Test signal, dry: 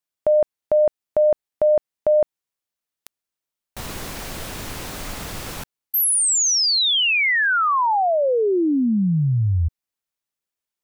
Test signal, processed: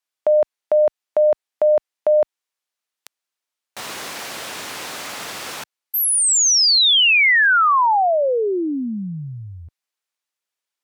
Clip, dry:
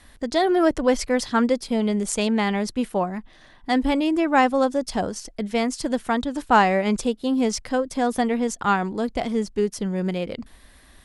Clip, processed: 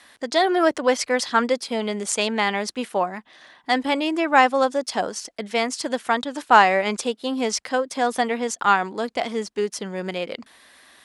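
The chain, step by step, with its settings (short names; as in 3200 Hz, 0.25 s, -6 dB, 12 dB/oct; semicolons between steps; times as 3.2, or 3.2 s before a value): weighting filter A; gain +3.5 dB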